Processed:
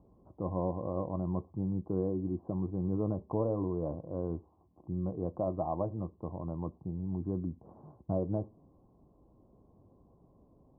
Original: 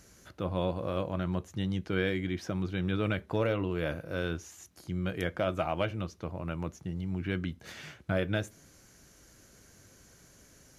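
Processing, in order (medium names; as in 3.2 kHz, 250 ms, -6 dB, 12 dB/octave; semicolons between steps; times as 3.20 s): rippled Chebyshev low-pass 1.1 kHz, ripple 3 dB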